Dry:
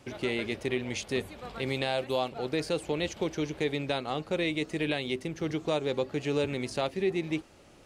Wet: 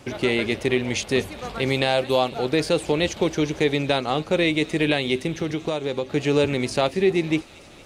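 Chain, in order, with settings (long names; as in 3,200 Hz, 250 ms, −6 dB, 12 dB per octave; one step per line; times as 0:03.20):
0:05.35–0:06.10: downward compressor 4 to 1, threshold −32 dBFS, peak gain reduction 7.5 dB
delay with a high-pass on its return 231 ms, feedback 73%, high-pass 3,000 Hz, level −16.5 dB
level +9 dB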